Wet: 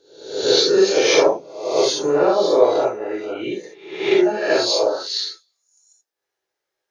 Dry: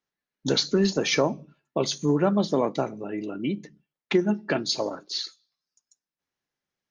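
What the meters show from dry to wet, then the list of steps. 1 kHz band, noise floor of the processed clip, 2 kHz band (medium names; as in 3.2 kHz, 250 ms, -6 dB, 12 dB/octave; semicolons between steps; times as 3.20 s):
+8.5 dB, -82 dBFS, +7.5 dB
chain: reverse spectral sustain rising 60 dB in 0.68 s; resonant low shelf 300 Hz -10 dB, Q 3; gated-style reverb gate 100 ms flat, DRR -3 dB; trim -1 dB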